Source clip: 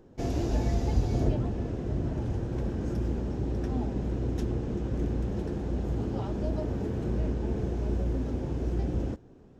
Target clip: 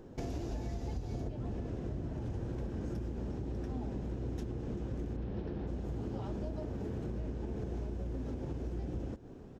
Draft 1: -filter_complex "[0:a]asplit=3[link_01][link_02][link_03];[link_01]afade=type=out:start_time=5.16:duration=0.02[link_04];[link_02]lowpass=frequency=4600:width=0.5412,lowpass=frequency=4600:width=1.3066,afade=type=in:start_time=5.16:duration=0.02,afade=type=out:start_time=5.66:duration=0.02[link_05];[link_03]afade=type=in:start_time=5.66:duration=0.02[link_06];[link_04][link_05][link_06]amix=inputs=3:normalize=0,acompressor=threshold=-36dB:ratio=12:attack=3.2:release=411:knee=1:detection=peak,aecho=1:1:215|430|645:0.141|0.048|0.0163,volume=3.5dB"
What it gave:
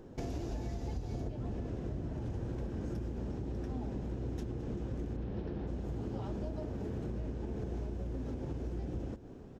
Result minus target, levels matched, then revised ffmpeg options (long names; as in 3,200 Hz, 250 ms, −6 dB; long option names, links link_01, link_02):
echo-to-direct +6 dB
-filter_complex "[0:a]asplit=3[link_01][link_02][link_03];[link_01]afade=type=out:start_time=5.16:duration=0.02[link_04];[link_02]lowpass=frequency=4600:width=0.5412,lowpass=frequency=4600:width=1.3066,afade=type=in:start_time=5.16:duration=0.02,afade=type=out:start_time=5.66:duration=0.02[link_05];[link_03]afade=type=in:start_time=5.66:duration=0.02[link_06];[link_04][link_05][link_06]amix=inputs=3:normalize=0,acompressor=threshold=-36dB:ratio=12:attack=3.2:release=411:knee=1:detection=peak,aecho=1:1:215|430:0.0708|0.0241,volume=3.5dB"